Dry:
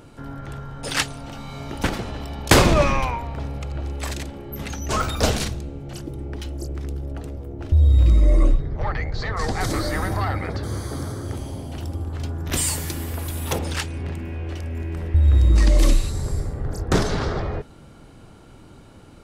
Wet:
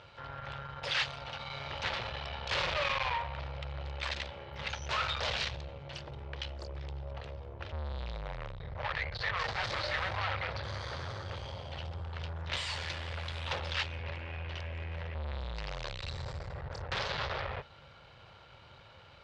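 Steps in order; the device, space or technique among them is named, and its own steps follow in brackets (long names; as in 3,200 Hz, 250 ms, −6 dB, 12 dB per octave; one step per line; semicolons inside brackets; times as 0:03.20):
scooped metal amplifier (tube saturation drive 30 dB, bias 0.75; loudspeaker in its box 93–4,000 Hz, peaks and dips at 190 Hz −3 dB, 350 Hz +4 dB, 540 Hz +9 dB, 930 Hz +3 dB; guitar amp tone stack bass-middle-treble 10-0-10)
level +8.5 dB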